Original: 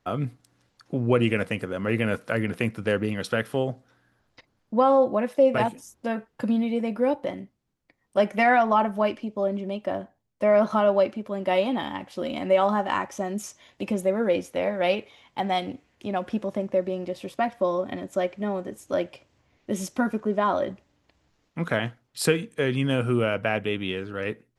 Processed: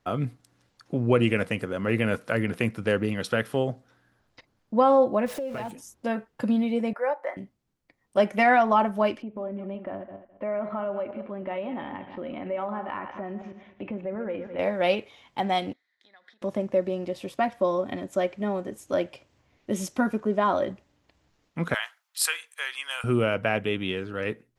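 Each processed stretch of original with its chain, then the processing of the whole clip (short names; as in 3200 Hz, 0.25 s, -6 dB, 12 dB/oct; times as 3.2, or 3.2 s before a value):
5.26–5.71 zero-crossing step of -35 dBFS + compressor 5:1, threshold -30 dBFS
6.93–7.37 HPF 540 Hz 24 dB/oct + resonant high shelf 2400 Hz -9 dB, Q 3
9.22–14.59 regenerating reverse delay 0.105 s, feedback 42%, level -11 dB + LPF 2500 Hz 24 dB/oct + compressor 2:1, threshold -35 dBFS
15.73–16.42 compressor 12:1, threshold -31 dBFS + double band-pass 2700 Hz, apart 1 oct
21.74–23.04 HPF 950 Hz 24 dB/oct + high shelf 9000 Hz +10.5 dB
whole clip: dry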